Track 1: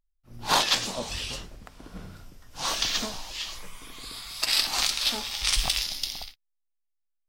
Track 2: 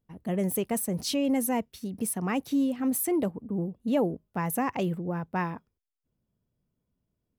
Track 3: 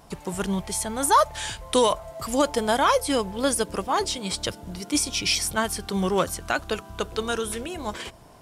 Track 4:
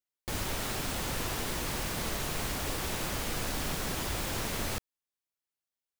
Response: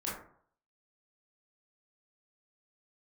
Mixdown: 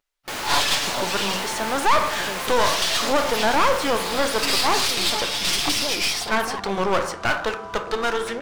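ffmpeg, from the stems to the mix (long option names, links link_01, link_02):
-filter_complex "[0:a]aecho=1:1:7:0.65,volume=-1dB[link_01];[1:a]adelay=1900,volume=-9dB[link_02];[2:a]lowpass=5700,equalizer=frequency=3200:width=1.5:gain=-4.5,adelay=750,volume=-2.5dB,asplit=2[link_03][link_04];[link_04]volume=-11dB[link_05];[3:a]volume=-1.5dB[link_06];[4:a]atrim=start_sample=2205[link_07];[link_05][link_07]afir=irnorm=-1:irlink=0[link_08];[link_01][link_02][link_03][link_06][link_08]amix=inputs=5:normalize=0,lowshelf=frequency=170:gain=-8,asplit=2[link_09][link_10];[link_10]highpass=frequency=720:poles=1,volume=19dB,asoftclip=type=tanh:threshold=-6dB[link_11];[link_09][link_11]amix=inputs=2:normalize=0,lowpass=frequency=3400:poles=1,volume=-6dB,aeval=exprs='clip(val(0),-1,0.0398)':channel_layout=same"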